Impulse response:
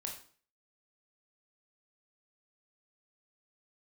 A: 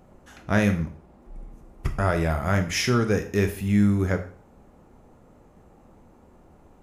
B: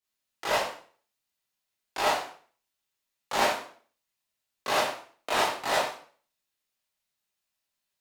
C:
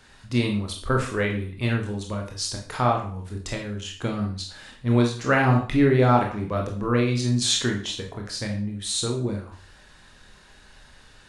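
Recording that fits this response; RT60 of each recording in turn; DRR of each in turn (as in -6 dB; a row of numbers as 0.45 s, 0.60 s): C; 0.45 s, 0.45 s, 0.45 s; 6.5 dB, -8.5 dB, 0.5 dB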